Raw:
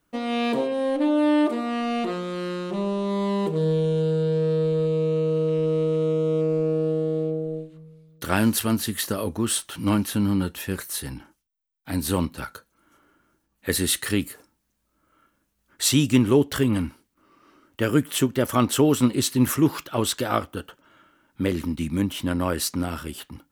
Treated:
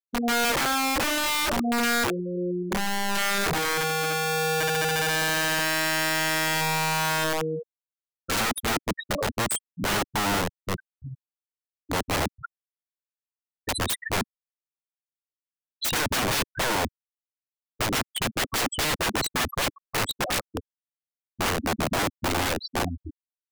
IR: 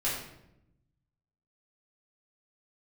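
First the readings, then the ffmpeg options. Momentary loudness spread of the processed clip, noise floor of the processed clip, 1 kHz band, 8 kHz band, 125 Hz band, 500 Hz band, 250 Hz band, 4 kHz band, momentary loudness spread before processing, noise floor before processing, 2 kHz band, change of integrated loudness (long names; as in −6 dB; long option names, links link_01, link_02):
8 LU, below −85 dBFS, +4.5 dB, +0.5 dB, −8.0 dB, −6.5 dB, −9.0 dB, +4.0 dB, 11 LU, −73 dBFS, +8.5 dB, −2.0 dB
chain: -af "afftfilt=real='re*gte(hypot(re,im),0.178)':imag='im*gte(hypot(re,im),0.178)':win_size=1024:overlap=0.75,aeval=exprs='(mod(15*val(0)+1,2)-1)/15':channel_layout=same,acontrast=23,volume=-1.5dB"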